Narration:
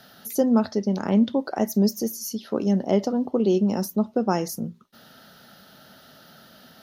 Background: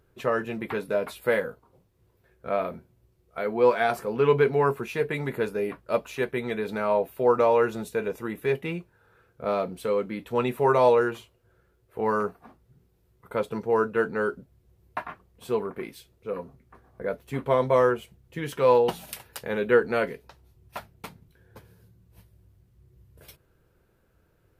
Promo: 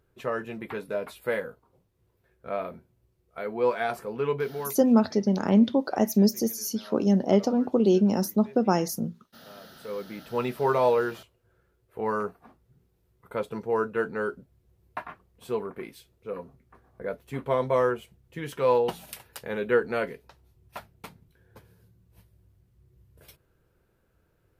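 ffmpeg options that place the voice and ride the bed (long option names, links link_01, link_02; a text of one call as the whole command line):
ffmpeg -i stem1.wav -i stem2.wav -filter_complex "[0:a]adelay=4400,volume=0dB[link_01];[1:a]volume=16dB,afade=type=out:start_time=4.06:duration=0.87:silence=0.112202,afade=type=in:start_time=9.61:duration=0.78:silence=0.0944061[link_02];[link_01][link_02]amix=inputs=2:normalize=0" out.wav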